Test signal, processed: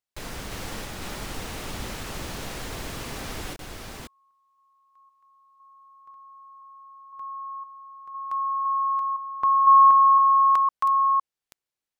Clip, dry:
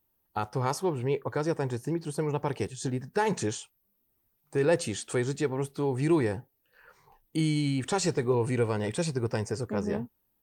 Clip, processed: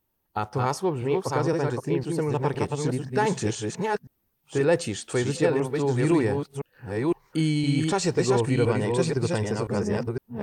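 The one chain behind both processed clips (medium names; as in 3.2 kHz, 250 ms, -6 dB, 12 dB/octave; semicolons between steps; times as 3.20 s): chunks repeated in reverse 509 ms, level -3 dB; treble shelf 10 kHz -7.5 dB; trim +3 dB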